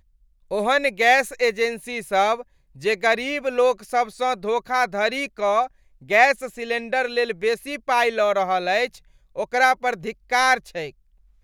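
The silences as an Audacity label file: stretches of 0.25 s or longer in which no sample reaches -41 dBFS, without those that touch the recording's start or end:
2.420000	2.760000	silence
5.670000	6.020000	silence
8.980000	9.360000	silence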